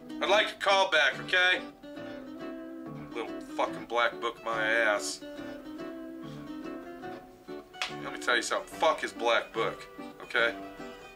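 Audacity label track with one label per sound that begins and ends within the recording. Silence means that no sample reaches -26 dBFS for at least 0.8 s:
3.160000	5.110000	sound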